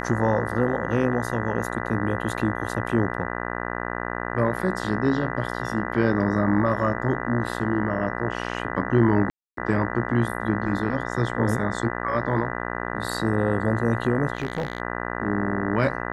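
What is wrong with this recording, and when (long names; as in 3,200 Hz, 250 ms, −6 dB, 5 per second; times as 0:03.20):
mains buzz 60 Hz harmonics 33 −30 dBFS
0:09.30–0:09.57: drop-out 273 ms
0:14.35–0:14.80: clipping −20.5 dBFS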